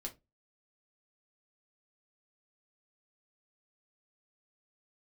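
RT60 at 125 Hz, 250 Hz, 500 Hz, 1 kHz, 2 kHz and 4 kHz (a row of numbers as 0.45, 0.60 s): 0.35, 0.30, 0.25, 0.20, 0.15, 0.15 s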